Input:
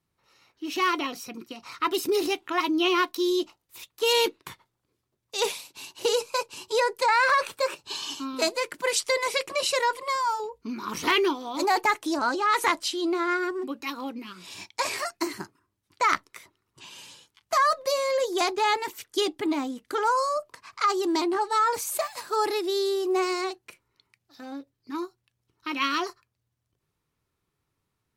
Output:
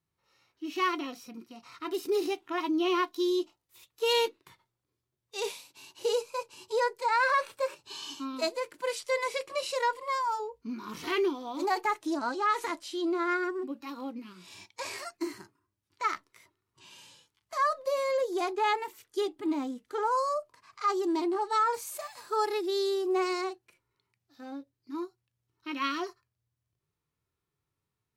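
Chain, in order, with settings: harmonic-percussive split percussive -13 dB; 17.85–20.11 dynamic EQ 5200 Hz, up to -4 dB, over -44 dBFS, Q 0.9; gain -3 dB

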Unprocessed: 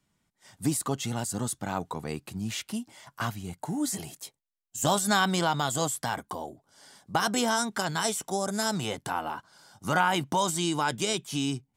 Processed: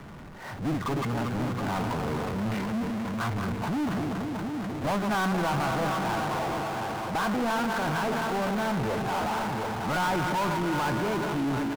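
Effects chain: regenerating reverse delay 0.119 s, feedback 80%, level -11 dB; LPF 1700 Hz 24 dB/oct; transient shaper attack -3 dB, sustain +6 dB; echo 0.723 s -11.5 dB; power-law curve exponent 0.35; gain -8.5 dB

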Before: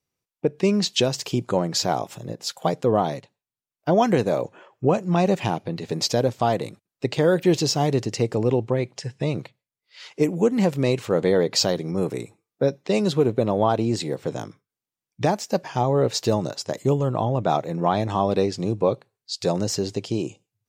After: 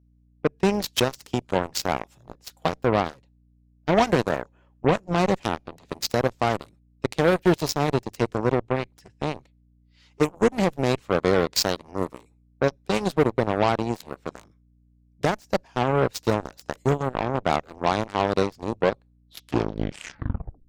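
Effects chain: tape stop at the end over 1.66 s; hum 60 Hz, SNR 20 dB; added harmonics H 3 -25 dB, 7 -17 dB, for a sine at -7.5 dBFS

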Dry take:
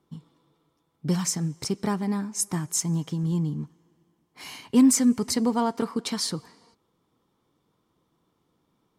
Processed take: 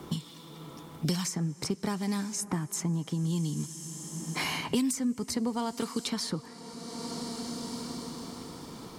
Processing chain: on a send at -22.5 dB: reverb RT60 5.5 s, pre-delay 40 ms; on the sum: three-band squash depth 100%; gain -4.5 dB

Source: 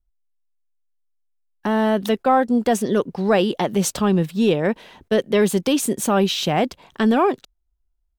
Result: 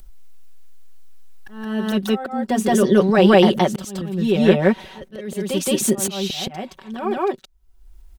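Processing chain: comb 5.3 ms, depth 82%; upward compressor, threshold -24 dBFS; auto swell 0.679 s; reverse echo 0.17 s -3 dB; gain +1.5 dB

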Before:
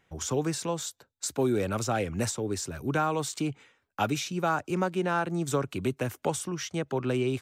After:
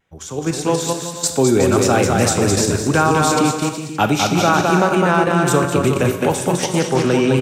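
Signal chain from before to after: AGC gain up to 13.5 dB; on a send: bouncing-ball echo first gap 0.21 s, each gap 0.75×, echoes 5; on the sum: vibrato 1.1 Hz 27 cents; in parallel at +2 dB: level quantiser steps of 19 dB; on the sum: Schroeder reverb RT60 0.72 s, combs from 30 ms, DRR 8.5 dB; 6.58–7.11 Doppler distortion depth 0.23 ms; gain -5.5 dB

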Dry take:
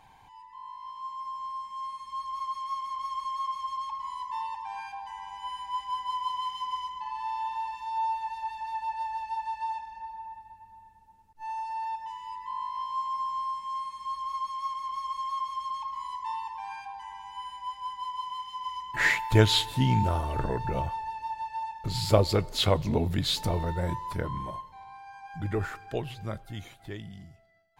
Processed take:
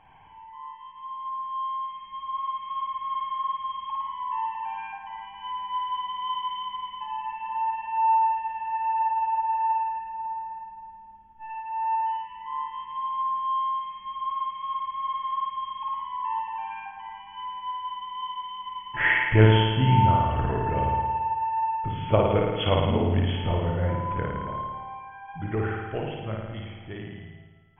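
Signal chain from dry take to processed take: brick-wall FIR low-pass 3400 Hz; flutter echo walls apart 9.4 m, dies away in 1.3 s

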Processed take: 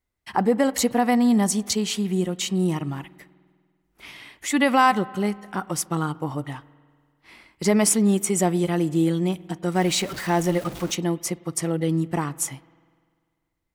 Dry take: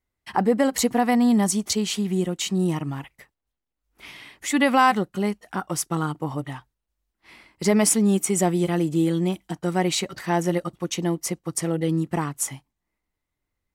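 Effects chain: 9.75–10.95 zero-crossing step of -32 dBFS; spring tank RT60 1.9 s, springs 49 ms, chirp 55 ms, DRR 20 dB

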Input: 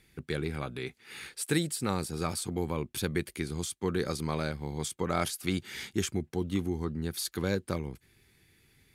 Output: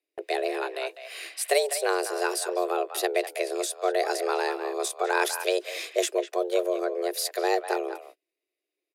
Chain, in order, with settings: speakerphone echo 0.2 s, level -9 dB; frequency shift +270 Hz; gate -51 dBFS, range -29 dB; gain +5 dB

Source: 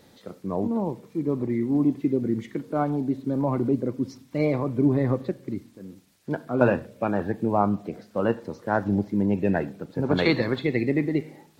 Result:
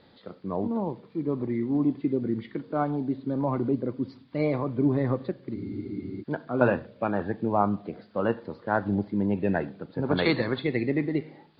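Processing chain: rippled Chebyshev low-pass 4800 Hz, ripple 3 dB; spectral freeze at 5.58, 0.64 s

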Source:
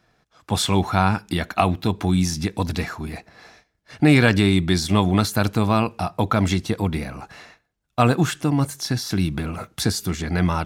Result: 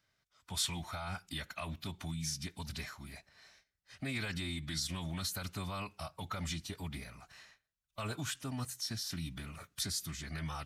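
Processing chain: limiter -11 dBFS, peak gain reduction 9 dB; passive tone stack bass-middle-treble 5-5-5; formant-preserving pitch shift -2 st; gain -2.5 dB

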